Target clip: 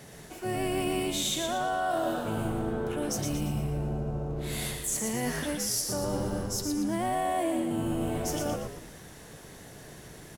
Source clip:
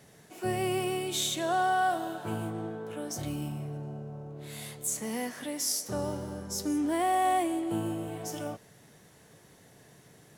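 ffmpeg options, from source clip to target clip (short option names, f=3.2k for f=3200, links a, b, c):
-filter_complex "[0:a]areverse,acompressor=threshold=-36dB:ratio=10,areverse,asplit=6[a][b][c][d][e][f];[b]adelay=116,afreqshift=-87,volume=-5dB[g];[c]adelay=232,afreqshift=-174,volume=-12.5dB[h];[d]adelay=348,afreqshift=-261,volume=-20.1dB[i];[e]adelay=464,afreqshift=-348,volume=-27.6dB[j];[f]adelay=580,afreqshift=-435,volume=-35.1dB[k];[a][g][h][i][j][k]amix=inputs=6:normalize=0,volume=8dB"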